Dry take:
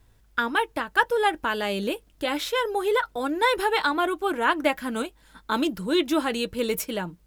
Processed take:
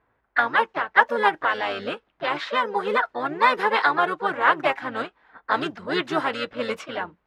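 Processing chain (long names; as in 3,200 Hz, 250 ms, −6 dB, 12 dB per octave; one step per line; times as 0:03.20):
low-pass that shuts in the quiet parts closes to 1,500 Hz, open at −19 dBFS
pitch-shifted copies added −12 semitones −5 dB, +3 semitones −8 dB, +4 semitones −15 dB
resonant band-pass 1,300 Hz, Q 0.81
level +4 dB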